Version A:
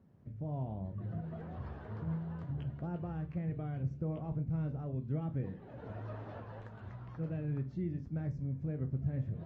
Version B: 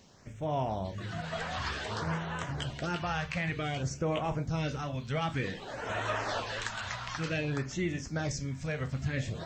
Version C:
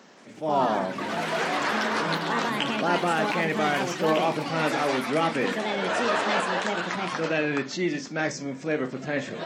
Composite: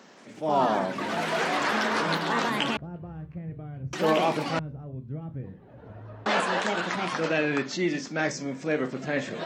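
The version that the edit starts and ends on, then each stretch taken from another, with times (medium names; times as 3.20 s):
C
2.77–3.93 s: from A
4.59–6.26 s: from A
not used: B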